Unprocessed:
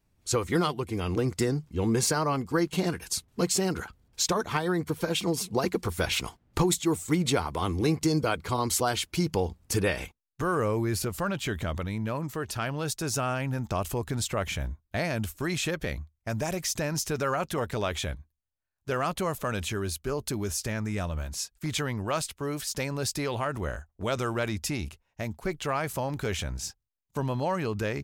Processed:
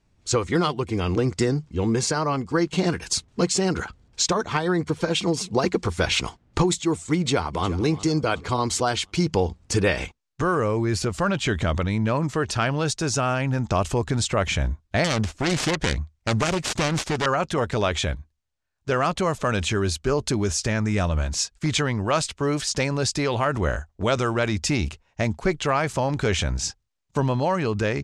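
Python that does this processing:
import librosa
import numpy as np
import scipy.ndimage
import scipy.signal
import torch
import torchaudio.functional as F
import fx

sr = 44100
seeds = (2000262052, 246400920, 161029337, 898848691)

y = fx.echo_throw(x, sr, start_s=7.17, length_s=0.55, ms=360, feedback_pct=45, wet_db=-16.0)
y = fx.self_delay(y, sr, depth_ms=0.64, at=(15.04, 17.26))
y = scipy.signal.sosfilt(scipy.signal.butter(4, 7900.0, 'lowpass', fs=sr, output='sos'), y)
y = fx.rider(y, sr, range_db=4, speed_s=0.5)
y = F.gain(torch.from_numpy(y), 6.0).numpy()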